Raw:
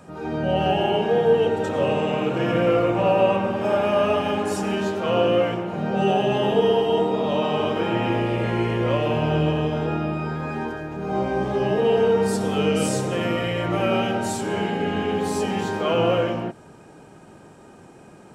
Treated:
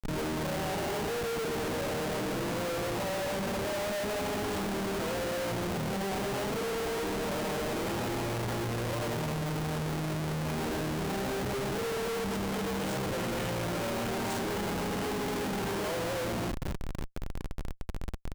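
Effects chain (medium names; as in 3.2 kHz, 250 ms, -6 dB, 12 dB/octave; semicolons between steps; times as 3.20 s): Butterworth band-stop 1.2 kHz, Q 5.7; compression 4:1, threshold -31 dBFS, peak gain reduction 15 dB; 3.55–4.41 s: low-pass 3.3 kHz 24 dB/octave; feedback delay 225 ms, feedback 19%, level -13 dB; Schmitt trigger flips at -38.5 dBFS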